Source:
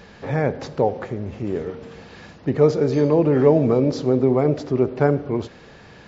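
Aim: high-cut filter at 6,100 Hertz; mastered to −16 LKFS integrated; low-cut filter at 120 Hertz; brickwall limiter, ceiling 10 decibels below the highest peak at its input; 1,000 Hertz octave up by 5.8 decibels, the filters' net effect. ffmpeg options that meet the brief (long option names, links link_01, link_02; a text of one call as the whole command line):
ffmpeg -i in.wav -af "highpass=120,lowpass=6100,equalizer=frequency=1000:width_type=o:gain=8,volume=7dB,alimiter=limit=-5dB:level=0:latency=1" out.wav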